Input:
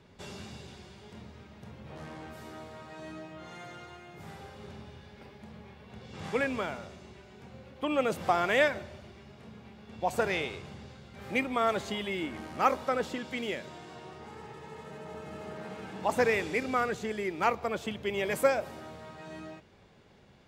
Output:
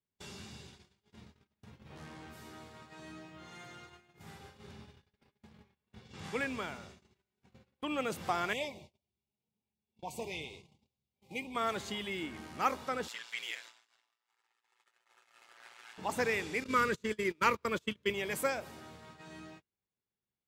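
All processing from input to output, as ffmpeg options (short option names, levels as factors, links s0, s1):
-filter_complex "[0:a]asettb=1/sr,asplit=3[s0][s1][s2];[s0]atrim=end=8.534[s3];[s1]atrim=start=8.53:end=11.55,asetpts=PTS-STARTPTS,afade=t=in:d=0.004:c=qsin,afade=t=out:st=3.016:d=0.004:c=qsin,flanger=delay=0.5:depth=6:regen=50:speed=1.6:shape=sinusoidal,asuperstop=centerf=1500:order=8:qfactor=1.3[s4];[s2]atrim=start=11.546[s5];[s3][s4]acrossfade=d=0.004:c1=hsin:c2=qsin[s6];[s6][s5]acrossfade=d=0.004:c1=qsin:c2=hsin,asettb=1/sr,asplit=3[s7][s8][s9];[s7]atrim=end=13.084[s10];[s8]atrim=start=13.08:end=15.98,asetpts=PTS-STARTPTS,afade=t=in:d=0.004:c=qsin,afade=t=out:st=2.896:d=0.004:c=qsin,highpass=1300,acontrast=28,aeval=exprs='val(0)*sin(2*PI*58*n/s)':c=same[s11];[s9]atrim=start=15.976[s12];[s10][s11]acrossfade=d=0.004:c1=hsin:c2=qsin[s13];[s13][s12]acrossfade=d=0.004:c1=qsin:c2=hsin,asettb=1/sr,asplit=3[s14][s15][s16];[s14]atrim=end=16.644[s17];[s15]atrim=start=16.64:end=18.14,asetpts=PTS-STARTPTS,afade=t=in:d=0.004:c=qsin,afade=t=out:st=1.496:d=0.004:c=qsin,agate=range=0.0398:threshold=0.0178:ratio=16:release=100:detection=peak,asuperstop=centerf=760:order=4:qfactor=3,acontrast=46[s18];[s16]atrim=start=18.136[s19];[s17][s18]acrossfade=d=0.004:c1=hsin:c2=qsin[s20];[s20][s19]acrossfade=d=0.004:c1=qsin:c2=hsin,highshelf=f=3100:g=5.5,agate=range=0.0251:threshold=0.00501:ratio=16:detection=peak,equalizer=f=600:w=2.4:g=-5.5,volume=0.562"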